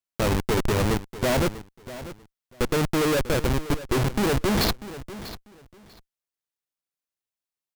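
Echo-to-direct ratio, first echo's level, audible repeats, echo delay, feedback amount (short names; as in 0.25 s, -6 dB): -15.0 dB, -15.0 dB, 2, 0.643 s, 20%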